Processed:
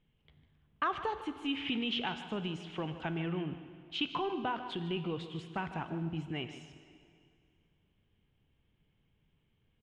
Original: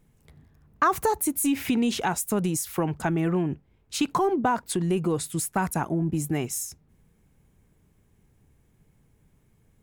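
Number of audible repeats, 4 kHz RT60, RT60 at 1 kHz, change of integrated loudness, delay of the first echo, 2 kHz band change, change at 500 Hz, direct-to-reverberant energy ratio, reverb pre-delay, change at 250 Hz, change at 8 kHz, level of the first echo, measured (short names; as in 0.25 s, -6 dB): 1, 2.1 s, 2.3 s, -10.5 dB, 0.151 s, -7.0 dB, -11.5 dB, 8.5 dB, 5 ms, -11.5 dB, under -30 dB, -13.5 dB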